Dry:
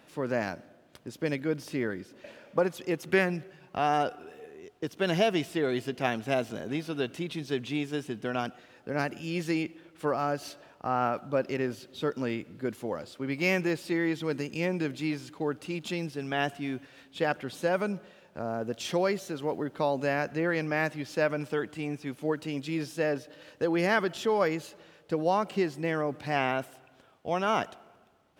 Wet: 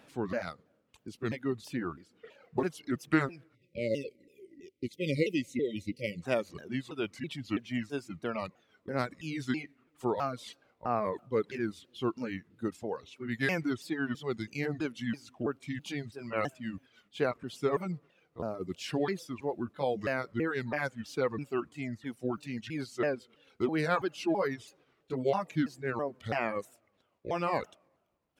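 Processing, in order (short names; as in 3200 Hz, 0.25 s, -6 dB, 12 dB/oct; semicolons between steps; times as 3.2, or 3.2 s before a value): repeated pitch sweeps -5.5 st, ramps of 0.329 s; spectral delete 3.55–6.23, 590–1900 Hz; reverb removal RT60 1.7 s; gain -1 dB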